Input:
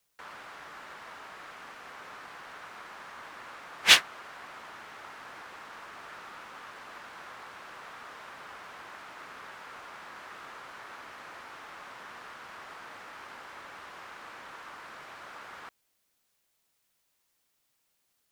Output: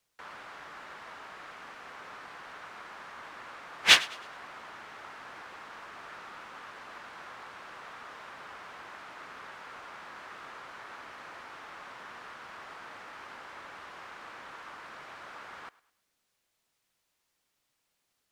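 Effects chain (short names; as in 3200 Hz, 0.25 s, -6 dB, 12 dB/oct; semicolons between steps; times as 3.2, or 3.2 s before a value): high shelf 10000 Hz -9.5 dB; thinning echo 0.105 s, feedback 37%, level -20 dB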